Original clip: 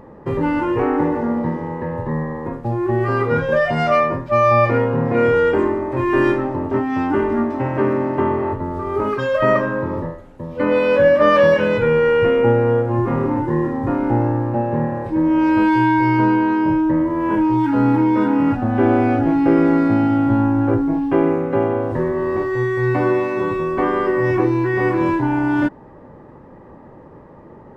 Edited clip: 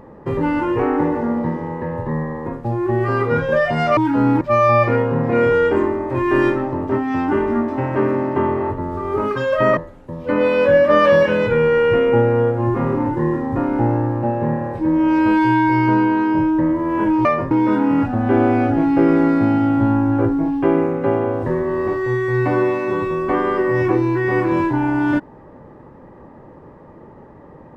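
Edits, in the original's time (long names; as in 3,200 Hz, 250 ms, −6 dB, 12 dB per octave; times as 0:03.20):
0:03.97–0:04.23: swap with 0:17.56–0:18.00
0:09.59–0:10.08: remove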